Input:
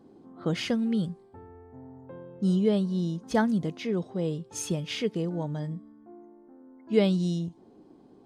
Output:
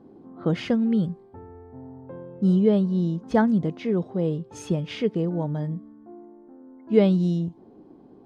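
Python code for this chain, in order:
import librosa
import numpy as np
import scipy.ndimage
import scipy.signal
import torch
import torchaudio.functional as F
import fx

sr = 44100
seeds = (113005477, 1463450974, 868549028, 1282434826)

y = fx.lowpass(x, sr, hz=1400.0, slope=6)
y = y * 10.0 ** (5.0 / 20.0)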